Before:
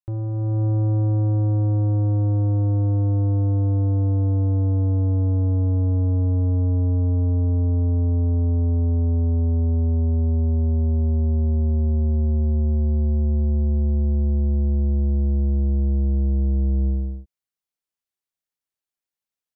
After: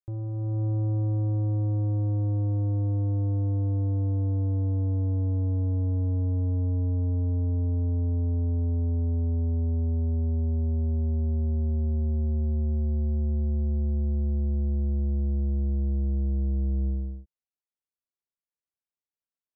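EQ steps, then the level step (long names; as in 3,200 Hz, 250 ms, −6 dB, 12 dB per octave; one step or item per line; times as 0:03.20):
low-pass filter 1,000 Hz 6 dB per octave
−6.0 dB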